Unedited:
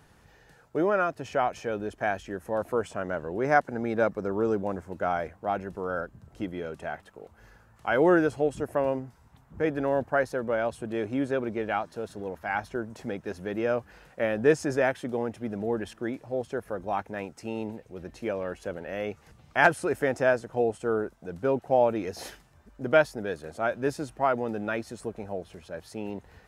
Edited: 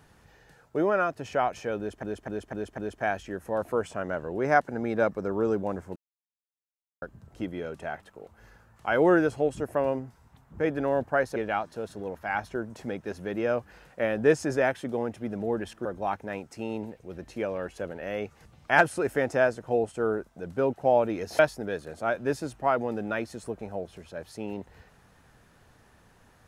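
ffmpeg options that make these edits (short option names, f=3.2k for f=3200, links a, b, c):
-filter_complex "[0:a]asplit=10[a][b][c][d][e][f][g][h][i][j];[a]atrim=end=2.032[k];[b]atrim=start=1.778:end=2.032[l];[c]atrim=start=1.778:end=2.032[m];[d]atrim=start=1.778:end=2.032[n];[e]atrim=start=1.778:end=4.96,asetpts=PTS-STARTPTS,afade=t=out:st=3.178:d=0.004:c=hsin[o];[f]atrim=start=4.96:end=6.02,asetpts=PTS-STARTPTS,volume=0[p];[g]atrim=start=6.02:end=10.362,asetpts=PTS-STARTPTS,afade=t=in:d=0.004:c=hsin[q];[h]atrim=start=11.558:end=16.052[r];[i]atrim=start=16.708:end=22.252[s];[j]atrim=start=22.958[t];[k][l]acrossfade=d=0.004:c1=hsin:c2=hsin[u];[u][m]acrossfade=d=0.004:c1=hsin:c2=hsin[v];[v][n]acrossfade=d=0.004:c1=hsin:c2=hsin[w];[o][p][q]concat=n=3:v=0:a=1[x];[w][x]acrossfade=d=0.004:c1=hsin:c2=hsin[y];[y][r]acrossfade=d=0.004:c1=hsin:c2=hsin[z];[z][s]acrossfade=d=0.004:c1=hsin:c2=hsin[aa];[aa][t]acrossfade=d=0.004:c1=hsin:c2=hsin"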